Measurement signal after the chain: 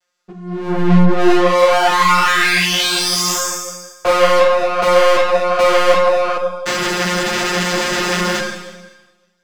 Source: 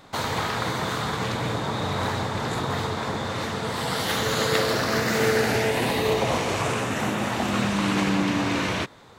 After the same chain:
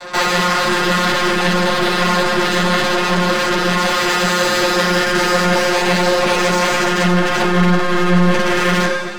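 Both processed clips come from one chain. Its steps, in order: high shelf 3800 Hz +11.5 dB; in parallel at -1.5 dB: vocal rider within 3 dB; on the sum: vocoder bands 16, saw 178 Hz; half-wave rectifier; Schroeder reverb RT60 1.2 s, combs from 30 ms, DRR 7.5 dB; overdrive pedal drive 36 dB, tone 4700 Hz, clips at 0 dBFS; ensemble effect; gain -3 dB

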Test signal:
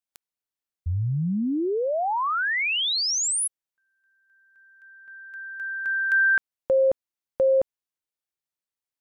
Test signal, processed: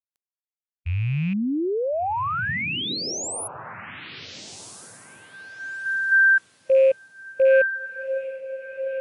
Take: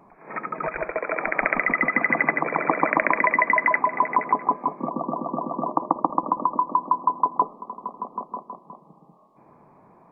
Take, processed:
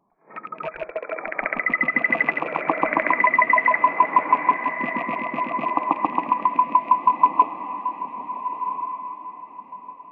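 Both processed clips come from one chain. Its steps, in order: rattling part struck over -38 dBFS, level -18 dBFS; diffused feedback echo 1.432 s, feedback 40%, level -5.5 dB; spectral expander 1.5:1

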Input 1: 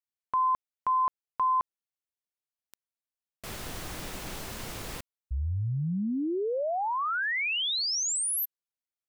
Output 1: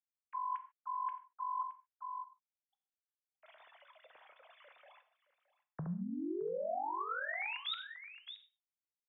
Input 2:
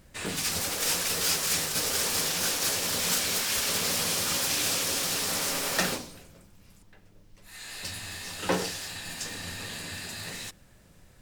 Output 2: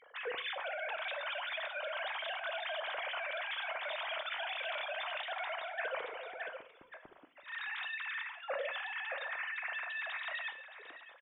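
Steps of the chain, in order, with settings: sine-wave speech; bell 2700 Hz -3 dB 0.32 oct; echo 0.62 s -18 dB; reverse; compressor 5:1, threshold -38 dBFS; reverse; non-linear reverb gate 0.17 s falling, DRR 9 dB

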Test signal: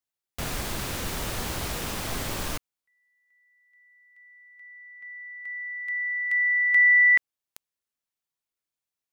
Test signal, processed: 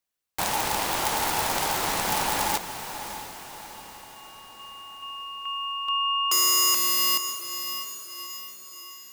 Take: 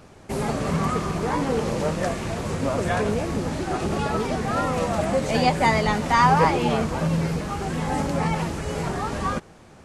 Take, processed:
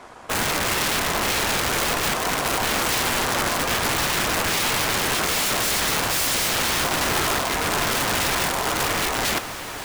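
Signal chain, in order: wrapped overs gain 22.5 dB; ring modulator 860 Hz; diffused feedback echo 0.629 s, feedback 52%, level -10.5 dB; gain +7.5 dB

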